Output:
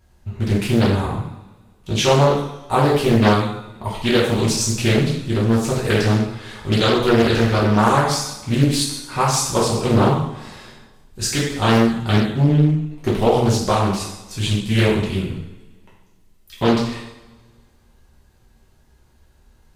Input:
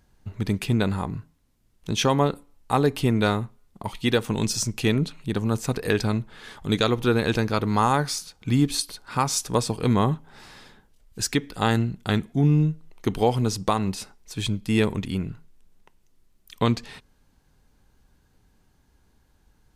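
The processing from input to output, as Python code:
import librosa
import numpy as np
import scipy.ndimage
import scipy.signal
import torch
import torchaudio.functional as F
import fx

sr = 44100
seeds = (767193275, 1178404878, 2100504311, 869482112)

y = fx.rev_double_slope(x, sr, seeds[0], early_s=0.71, late_s=1.8, knee_db=-18, drr_db=-7.5)
y = fx.doppler_dist(y, sr, depth_ms=0.63)
y = y * librosa.db_to_amplitude(-1.5)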